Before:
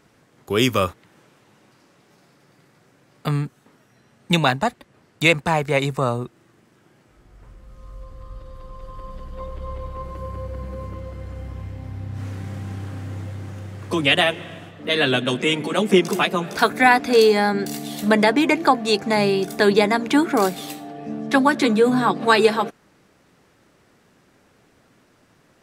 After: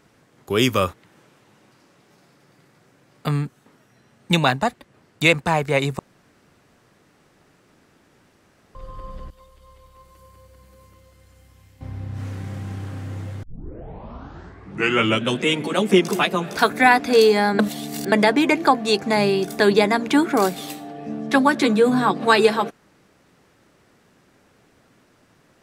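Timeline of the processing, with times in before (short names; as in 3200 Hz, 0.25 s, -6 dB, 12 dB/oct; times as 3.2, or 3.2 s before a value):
5.99–8.75 room tone
9.3–11.81 pre-emphasis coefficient 0.9
13.43 tape start 1.94 s
17.59–18.12 reverse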